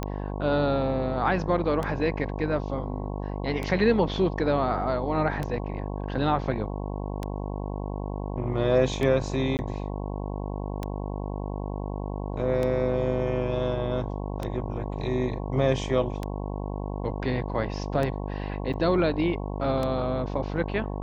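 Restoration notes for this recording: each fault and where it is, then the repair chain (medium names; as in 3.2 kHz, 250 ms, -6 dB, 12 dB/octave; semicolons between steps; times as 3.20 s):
buzz 50 Hz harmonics 22 -32 dBFS
tick 33 1/3 rpm -16 dBFS
9.57–9.59 s: dropout 19 ms
18.73–18.74 s: dropout 6.7 ms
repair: de-click; de-hum 50 Hz, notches 22; interpolate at 9.57 s, 19 ms; interpolate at 18.73 s, 6.7 ms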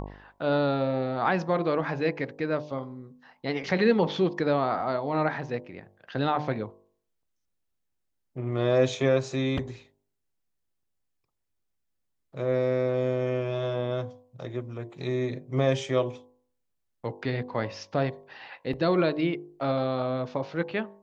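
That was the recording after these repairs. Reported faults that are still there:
nothing left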